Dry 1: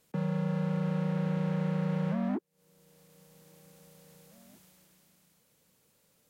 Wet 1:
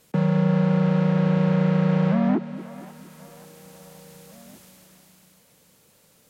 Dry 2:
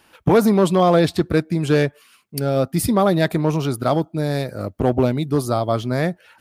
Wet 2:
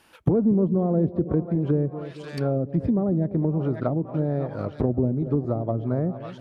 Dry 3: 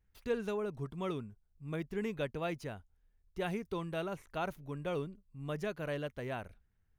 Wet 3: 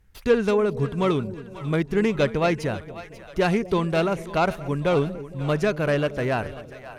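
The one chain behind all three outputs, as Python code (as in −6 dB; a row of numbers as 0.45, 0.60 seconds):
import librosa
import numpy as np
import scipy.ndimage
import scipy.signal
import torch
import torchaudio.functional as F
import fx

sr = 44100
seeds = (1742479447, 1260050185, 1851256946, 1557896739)

y = fx.self_delay(x, sr, depth_ms=0.074)
y = fx.echo_split(y, sr, split_hz=590.0, low_ms=230, high_ms=539, feedback_pct=52, wet_db=-14.5)
y = fx.env_lowpass_down(y, sr, base_hz=350.0, full_db=-14.5)
y = y * 10.0 ** (-24 / 20.0) / np.sqrt(np.mean(np.square(y)))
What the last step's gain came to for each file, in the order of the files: +10.5, −3.0, +15.0 decibels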